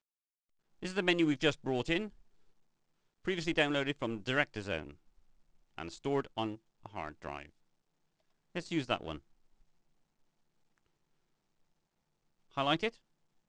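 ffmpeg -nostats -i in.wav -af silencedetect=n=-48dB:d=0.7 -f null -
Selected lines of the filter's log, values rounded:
silence_start: 0.00
silence_end: 0.83 | silence_duration: 0.83
silence_start: 2.09
silence_end: 3.25 | silence_duration: 1.16
silence_start: 4.93
silence_end: 5.78 | silence_duration: 0.86
silence_start: 7.49
silence_end: 8.55 | silence_duration: 1.06
silence_start: 9.19
silence_end: 12.55 | silence_duration: 3.36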